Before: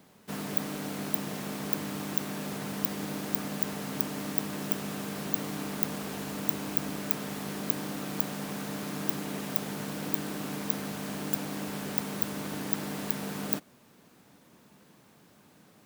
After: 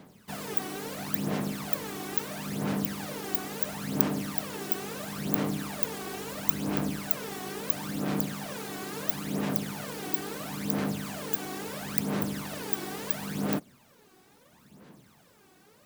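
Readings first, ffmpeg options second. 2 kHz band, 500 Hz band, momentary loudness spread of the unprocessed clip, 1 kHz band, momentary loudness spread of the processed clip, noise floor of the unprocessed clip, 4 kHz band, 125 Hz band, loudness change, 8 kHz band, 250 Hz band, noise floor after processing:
+1.5 dB, +2.5 dB, 5 LU, +2.0 dB, 8 LU, −59 dBFS, +1.0 dB, +2.5 dB, +1.0 dB, +1.0 dB, +2.0 dB, −60 dBFS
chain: -af "aphaser=in_gain=1:out_gain=1:delay=2.7:decay=0.65:speed=0.74:type=sinusoidal,volume=-1.5dB"

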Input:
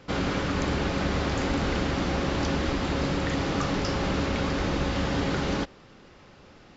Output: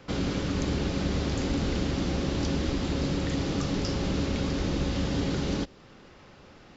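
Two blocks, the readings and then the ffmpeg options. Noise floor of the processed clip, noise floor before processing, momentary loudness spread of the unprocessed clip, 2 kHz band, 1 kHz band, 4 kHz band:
−52 dBFS, −52 dBFS, 1 LU, −7.0 dB, −7.5 dB, −2.0 dB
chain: -filter_complex "[0:a]acrossover=split=490|3000[link_01][link_02][link_03];[link_02]acompressor=threshold=-45dB:ratio=2.5[link_04];[link_01][link_04][link_03]amix=inputs=3:normalize=0"

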